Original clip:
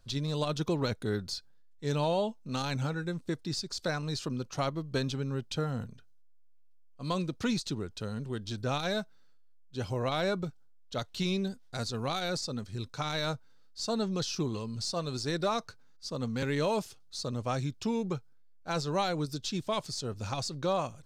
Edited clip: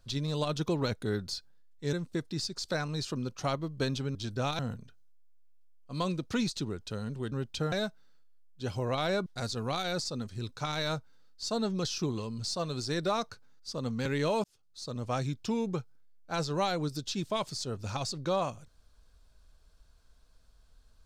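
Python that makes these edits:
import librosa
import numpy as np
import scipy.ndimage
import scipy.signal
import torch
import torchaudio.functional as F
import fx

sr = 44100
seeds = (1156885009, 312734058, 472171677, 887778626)

y = fx.edit(x, sr, fx.cut(start_s=1.93, length_s=1.14),
    fx.swap(start_s=5.29, length_s=0.4, other_s=8.42, other_length_s=0.44),
    fx.cut(start_s=10.4, length_s=1.23),
    fx.fade_in_span(start_s=16.81, length_s=0.67), tone=tone)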